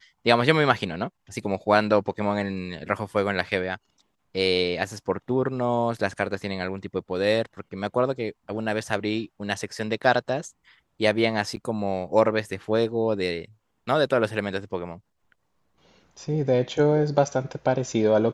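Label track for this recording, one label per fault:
11.560000	11.570000	gap 9.9 ms

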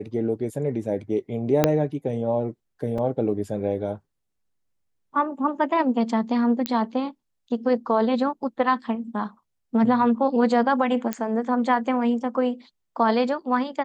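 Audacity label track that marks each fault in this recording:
1.640000	1.640000	pop -3 dBFS
2.980000	2.980000	gap 3.7 ms
6.660000	6.660000	pop -9 dBFS
11.130000	11.130000	pop -11 dBFS

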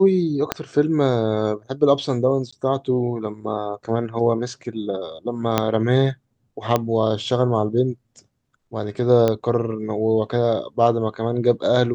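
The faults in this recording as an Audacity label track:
0.520000	0.520000	pop -5 dBFS
2.510000	2.520000	gap 15 ms
5.580000	5.580000	pop -3 dBFS
6.760000	6.760000	pop -6 dBFS
9.280000	9.280000	pop -8 dBFS

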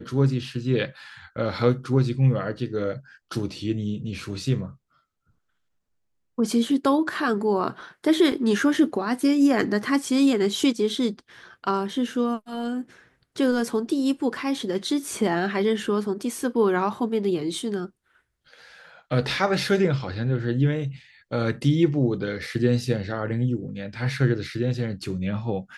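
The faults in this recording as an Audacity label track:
8.320000	8.320000	gap 2.7 ms

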